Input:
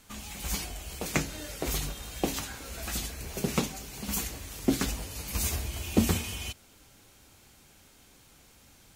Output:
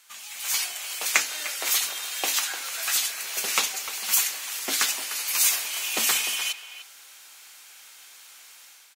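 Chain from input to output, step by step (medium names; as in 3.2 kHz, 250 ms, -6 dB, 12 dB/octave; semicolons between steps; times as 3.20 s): high-pass 1.3 kHz 12 dB/octave; level rider gain up to 8.5 dB; speakerphone echo 300 ms, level -11 dB; trim +3 dB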